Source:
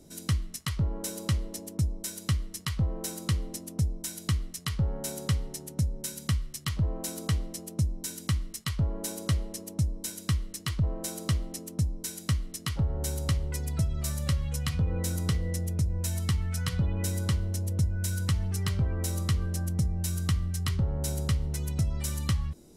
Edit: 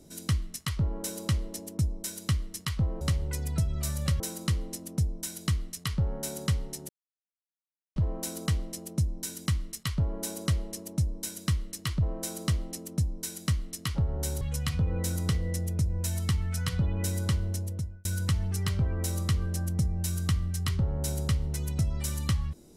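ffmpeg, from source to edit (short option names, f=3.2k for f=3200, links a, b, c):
-filter_complex "[0:a]asplit=7[a][b][c][d][e][f][g];[a]atrim=end=3.012[h];[b]atrim=start=13.218:end=14.412[i];[c]atrim=start=3.008:end=5.7,asetpts=PTS-STARTPTS,afade=t=out:st=2.688:d=0.004:c=hsin[j];[d]atrim=start=5.7:end=6.77,asetpts=PTS-STARTPTS,volume=0[k];[e]atrim=start=6.77:end=13.222,asetpts=PTS-STARTPTS,afade=t=in:d=0.004:c=hsin[l];[f]atrim=start=14.408:end=18.05,asetpts=PTS-STARTPTS,afade=t=out:st=3.102:d=0.54[m];[g]atrim=start=18.05,asetpts=PTS-STARTPTS,afade=t=in:d=0.004:c=hsin[n];[h][i]acrossfade=d=0.004:c1=hsin:c2=hsin[o];[j][k][l]concat=n=3:v=0:a=1[p];[o][p]acrossfade=d=0.004:c1=hsin:c2=hsin[q];[m][n]concat=n=2:v=0:a=1[r];[q][r]acrossfade=d=0.004:c1=hsin:c2=hsin"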